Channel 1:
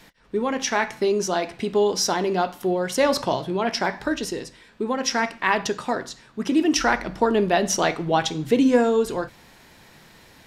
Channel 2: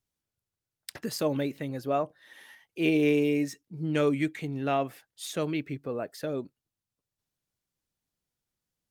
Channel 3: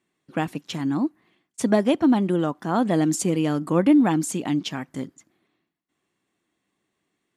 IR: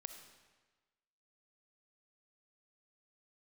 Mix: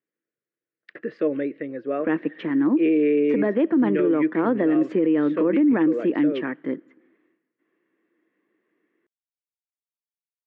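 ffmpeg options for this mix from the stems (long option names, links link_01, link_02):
-filter_complex "[1:a]equalizer=frequency=930:width=7.1:gain=-14,volume=-0.5dB,asplit=2[link_01][link_02];[link_02]volume=-20dB[link_03];[2:a]adelay=1700,volume=0.5dB,asplit=2[link_04][link_05];[link_05]volume=-17dB[link_06];[3:a]atrim=start_sample=2205[link_07];[link_03][link_06]amix=inputs=2:normalize=0[link_08];[link_08][link_07]afir=irnorm=-1:irlink=0[link_09];[link_01][link_04][link_09]amix=inputs=3:normalize=0,highpass=frequency=180:width=0.5412,highpass=frequency=180:width=1.3066,equalizer=frequency=180:width_type=q:width=4:gain=-4,equalizer=frequency=330:width_type=q:width=4:gain=9,equalizer=frequency=480:width_type=q:width=4:gain=9,equalizer=frequency=770:width_type=q:width=4:gain=-8,equalizer=frequency=1800:width_type=q:width=4:gain=7,lowpass=frequency=2400:width=0.5412,lowpass=frequency=2400:width=1.3066,alimiter=limit=-13dB:level=0:latency=1:release=36"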